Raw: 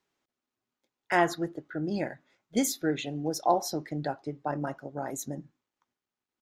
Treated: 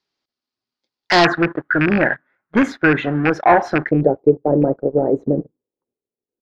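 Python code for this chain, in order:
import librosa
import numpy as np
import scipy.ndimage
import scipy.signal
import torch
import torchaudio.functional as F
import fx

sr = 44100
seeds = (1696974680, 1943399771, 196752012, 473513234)

y = fx.rattle_buzz(x, sr, strikes_db=-31.0, level_db=-20.0)
y = fx.leveller(y, sr, passes=3)
y = fx.lowpass_res(y, sr, hz=fx.steps((0.0, 4700.0), (1.25, 1600.0), (3.91, 460.0)), q=4.4)
y = y * librosa.db_to_amplitude(4.0)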